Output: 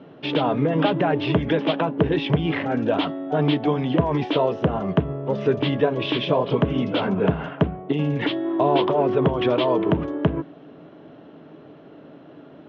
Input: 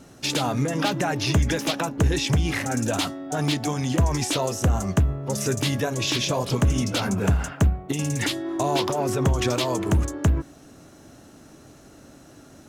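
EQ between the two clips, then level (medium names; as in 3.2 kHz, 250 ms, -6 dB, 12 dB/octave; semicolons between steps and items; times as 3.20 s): distance through air 150 m; cabinet simulation 150–3400 Hz, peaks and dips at 160 Hz +8 dB, 300 Hz +5 dB, 440 Hz +9 dB, 630 Hz +6 dB, 1 kHz +5 dB, 3.2 kHz +7 dB; 0.0 dB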